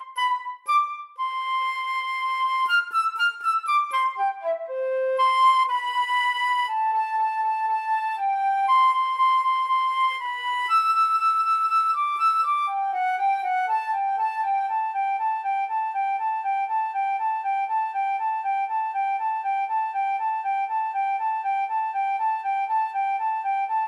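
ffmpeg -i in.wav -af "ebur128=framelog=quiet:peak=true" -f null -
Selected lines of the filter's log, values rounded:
Integrated loudness:
  I:         -23.5 LUFS
  Threshold: -33.5 LUFS
Loudness range:
  LRA:         4.0 LU
  Threshold: -43.3 LUFS
  LRA low:   -25.4 LUFS
  LRA high:  -21.4 LUFS
True peak:
  Peak:      -10.6 dBFS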